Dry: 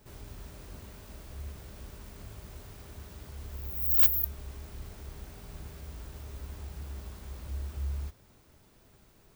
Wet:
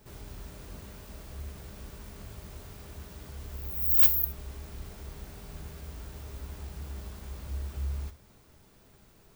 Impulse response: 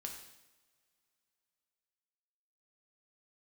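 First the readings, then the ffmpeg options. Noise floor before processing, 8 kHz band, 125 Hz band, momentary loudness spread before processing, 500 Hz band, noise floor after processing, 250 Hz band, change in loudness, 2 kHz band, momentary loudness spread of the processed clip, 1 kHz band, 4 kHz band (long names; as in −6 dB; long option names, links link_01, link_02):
−61 dBFS, +2.0 dB, +1.0 dB, 25 LU, +2.0 dB, −59 dBFS, +2.5 dB, +2.5 dB, +1.5 dB, 25 LU, +1.5 dB, +2.0 dB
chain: -filter_complex "[0:a]asplit=2[link_01][link_02];[1:a]atrim=start_sample=2205,atrim=end_sample=3528[link_03];[link_02][link_03]afir=irnorm=-1:irlink=0,volume=1.5dB[link_04];[link_01][link_04]amix=inputs=2:normalize=0,volume=-3dB"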